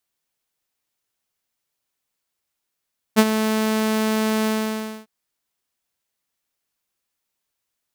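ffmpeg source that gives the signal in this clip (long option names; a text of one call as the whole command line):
ffmpeg -f lavfi -i "aevalsrc='0.501*(2*mod(218*t,1)-1)':duration=1.901:sample_rate=44100,afade=type=in:duration=0.03,afade=type=out:start_time=0.03:duration=0.05:silence=0.316,afade=type=out:start_time=1.3:duration=0.601" out.wav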